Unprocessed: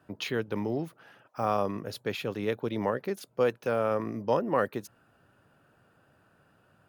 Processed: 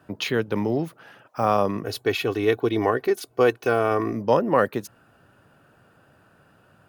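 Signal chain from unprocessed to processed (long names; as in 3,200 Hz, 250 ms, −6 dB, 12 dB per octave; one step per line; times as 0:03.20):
0:01.84–0:04.13: comb filter 2.7 ms, depth 73%
level +7 dB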